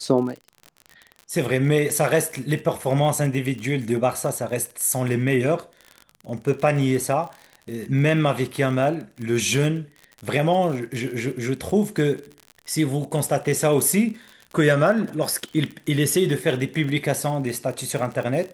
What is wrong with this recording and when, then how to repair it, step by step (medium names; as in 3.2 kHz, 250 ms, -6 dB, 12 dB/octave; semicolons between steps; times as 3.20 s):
crackle 43 per s -30 dBFS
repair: de-click